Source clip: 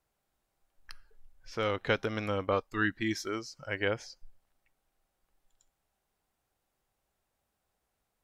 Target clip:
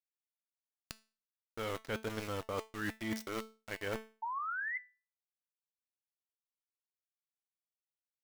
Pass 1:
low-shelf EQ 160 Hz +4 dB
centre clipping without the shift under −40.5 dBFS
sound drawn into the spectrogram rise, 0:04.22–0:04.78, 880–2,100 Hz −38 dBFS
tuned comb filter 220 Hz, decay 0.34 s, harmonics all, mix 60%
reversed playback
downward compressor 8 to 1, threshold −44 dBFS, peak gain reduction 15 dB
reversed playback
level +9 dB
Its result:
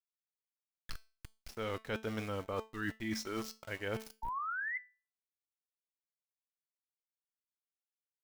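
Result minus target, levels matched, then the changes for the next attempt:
centre clipping without the shift: distortion −8 dB
change: centre clipping without the shift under −32.5 dBFS

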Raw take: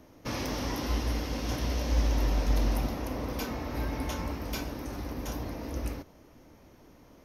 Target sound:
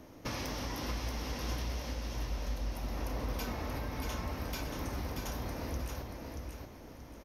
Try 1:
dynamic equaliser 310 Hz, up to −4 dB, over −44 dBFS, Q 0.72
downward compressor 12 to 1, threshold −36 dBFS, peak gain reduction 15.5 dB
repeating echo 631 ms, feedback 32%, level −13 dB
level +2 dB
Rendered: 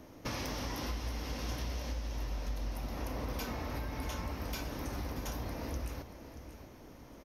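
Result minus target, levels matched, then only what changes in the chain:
echo-to-direct −8 dB
change: repeating echo 631 ms, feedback 32%, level −5 dB

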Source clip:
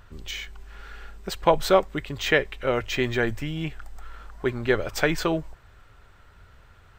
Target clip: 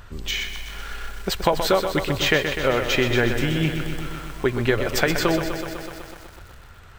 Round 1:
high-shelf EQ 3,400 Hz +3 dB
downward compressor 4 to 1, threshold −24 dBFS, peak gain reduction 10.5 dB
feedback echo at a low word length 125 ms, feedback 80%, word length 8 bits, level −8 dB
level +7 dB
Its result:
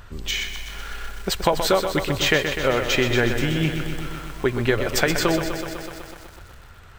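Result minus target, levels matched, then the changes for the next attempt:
8,000 Hz band +2.5 dB
add after downward compressor: dynamic equaliser 8,100 Hz, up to −4 dB, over −45 dBFS, Q 0.92

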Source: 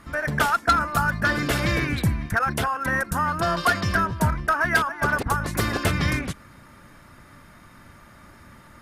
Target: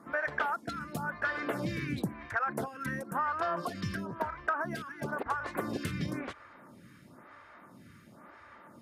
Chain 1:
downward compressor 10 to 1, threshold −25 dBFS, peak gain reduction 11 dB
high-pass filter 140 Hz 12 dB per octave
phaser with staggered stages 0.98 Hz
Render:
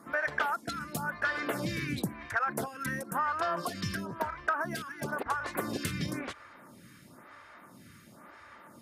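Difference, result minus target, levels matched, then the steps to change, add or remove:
8,000 Hz band +7.0 dB
add after high-pass filter: high-shelf EQ 3,300 Hz −9.5 dB

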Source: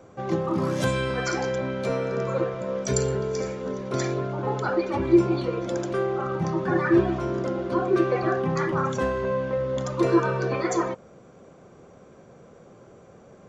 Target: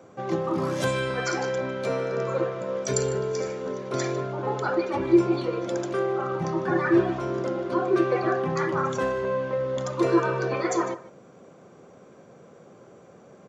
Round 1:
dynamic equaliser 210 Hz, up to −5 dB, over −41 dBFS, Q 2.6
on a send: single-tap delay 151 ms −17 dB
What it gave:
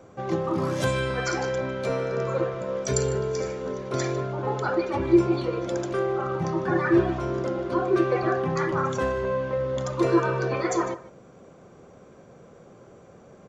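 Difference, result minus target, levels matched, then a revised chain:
125 Hz band +2.5 dB
dynamic equaliser 210 Hz, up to −5 dB, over −41 dBFS, Q 2.6
high-pass filter 130 Hz 12 dB per octave
on a send: single-tap delay 151 ms −17 dB

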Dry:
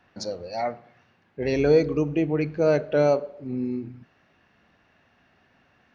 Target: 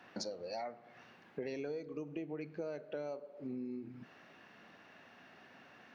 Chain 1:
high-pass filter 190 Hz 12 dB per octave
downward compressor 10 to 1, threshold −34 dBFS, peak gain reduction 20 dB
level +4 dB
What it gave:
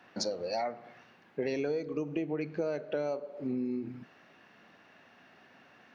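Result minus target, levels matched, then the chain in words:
downward compressor: peak gain reduction −8.5 dB
high-pass filter 190 Hz 12 dB per octave
downward compressor 10 to 1, threshold −43.5 dBFS, peak gain reduction 28.5 dB
level +4 dB

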